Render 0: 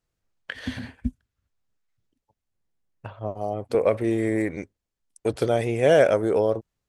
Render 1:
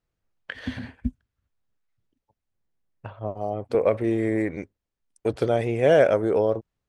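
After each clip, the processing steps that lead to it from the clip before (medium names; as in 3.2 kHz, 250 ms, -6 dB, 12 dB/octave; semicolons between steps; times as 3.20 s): treble shelf 5.7 kHz -11.5 dB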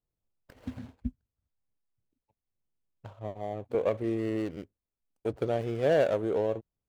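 median filter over 25 samples; trim -6.5 dB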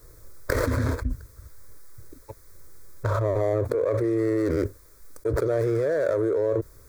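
static phaser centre 780 Hz, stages 6; level flattener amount 100%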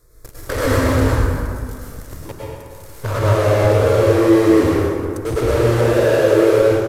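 in parallel at -7.5 dB: fuzz box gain 45 dB, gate -38 dBFS; on the sum: plate-style reverb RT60 2.2 s, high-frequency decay 0.55×, pre-delay 90 ms, DRR -6.5 dB; resampled via 32 kHz; trim -4.5 dB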